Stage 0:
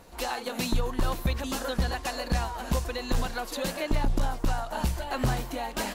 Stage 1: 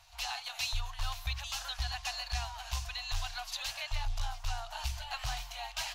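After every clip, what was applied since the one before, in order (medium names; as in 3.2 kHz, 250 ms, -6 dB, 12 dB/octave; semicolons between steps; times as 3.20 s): Chebyshev band-stop 110–700 Hz, order 4; high-order bell 4 kHz +9 dB; trim -8 dB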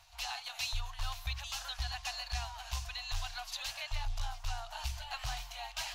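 crackle 17 per s -53 dBFS; reverse; upward compressor, threshold -42 dBFS; reverse; trim -2 dB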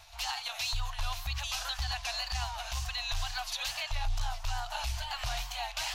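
peak limiter -31 dBFS, peak gain reduction 8 dB; wow and flutter 79 cents; trim +7 dB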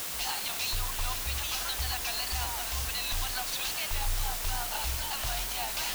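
word length cut 6-bit, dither triangular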